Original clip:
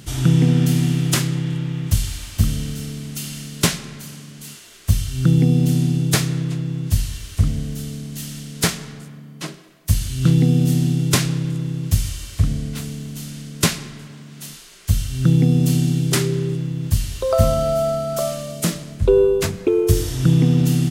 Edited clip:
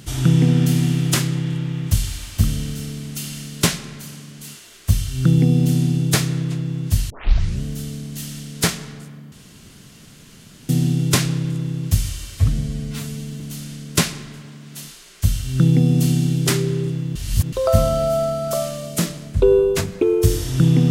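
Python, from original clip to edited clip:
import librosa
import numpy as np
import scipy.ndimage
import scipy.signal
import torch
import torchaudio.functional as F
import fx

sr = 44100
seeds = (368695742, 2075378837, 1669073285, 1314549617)

y = fx.edit(x, sr, fx.tape_start(start_s=7.1, length_s=0.53),
    fx.room_tone_fill(start_s=9.32, length_s=1.37),
    fx.stretch_span(start_s=12.37, length_s=0.69, factor=1.5),
    fx.reverse_span(start_s=16.81, length_s=0.37), tone=tone)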